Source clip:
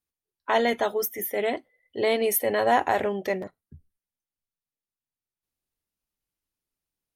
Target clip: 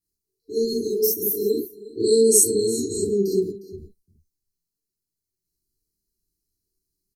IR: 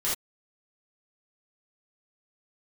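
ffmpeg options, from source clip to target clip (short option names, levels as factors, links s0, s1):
-filter_complex "[0:a]asettb=1/sr,asplit=3[s0][s1][s2];[s0]atrim=end=2.004[s3];[s1]atrim=start=2:end=2.99,asetpts=PTS-STARTPTS,afade=t=in:d=0.004:c=qsin,afade=t=out:st=0.986:d=0.004:c=qsin,lowpass=f=7900:t=q:w=8.7[s4];[s2]atrim=start=2.986[s5];[s3][s4]acrossfade=d=0.004:c1=hsin:c2=qsin[s6];[s6][s5]acrossfade=d=0.004:c1=qsin:c2=hsin,aecho=1:1:358:0.126[s7];[1:a]atrim=start_sample=2205[s8];[s7][s8]afir=irnorm=-1:irlink=0,afftfilt=real='re*(1-between(b*sr/4096,460,3900))':imag='im*(1-between(b*sr/4096,460,3900))':win_size=4096:overlap=0.75"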